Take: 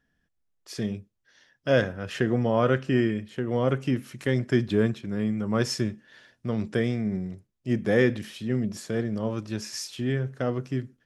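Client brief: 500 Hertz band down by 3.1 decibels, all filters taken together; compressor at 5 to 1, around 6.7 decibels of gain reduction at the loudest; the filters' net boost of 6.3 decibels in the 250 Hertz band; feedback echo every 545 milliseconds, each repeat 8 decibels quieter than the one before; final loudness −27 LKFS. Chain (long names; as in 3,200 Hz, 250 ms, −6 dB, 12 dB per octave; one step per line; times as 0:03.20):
parametric band 250 Hz +9 dB
parametric band 500 Hz −7.5 dB
downward compressor 5 to 1, threshold −21 dBFS
repeating echo 545 ms, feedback 40%, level −8 dB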